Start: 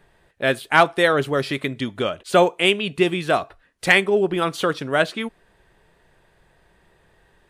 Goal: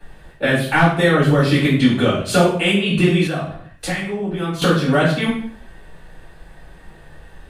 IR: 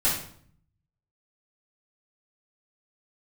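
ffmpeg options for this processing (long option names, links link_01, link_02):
-filter_complex "[0:a]acrossover=split=200[link_01][link_02];[link_02]acompressor=threshold=-26dB:ratio=5[link_03];[link_01][link_03]amix=inputs=2:normalize=0[link_04];[1:a]atrim=start_sample=2205,afade=type=out:start_time=0.43:duration=0.01,atrim=end_sample=19404[link_05];[link_04][link_05]afir=irnorm=-1:irlink=0,asettb=1/sr,asplit=3[link_06][link_07][link_08];[link_06]atrim=end=3.274[link_09];[link_07]atrim=start=3.27:end=4.62,asetpts=PTS-STARTPTS,afade=type=in:duration=0.004:curve=qsin,afade=type=out:start_time=1.346:duration=0.004:curve=qsin,acompressor=threshold=-36dB:ratio=1.5[link_10];[link_08]atrim=start=4.616[link_11];[link_09][link_10]acrossfade=duration=0.004:curve1=hsin:curve2=qsin[link_12];[link_12][link_11]acrossfade=duration=0.004:curve1=qsin:curve2=hsin"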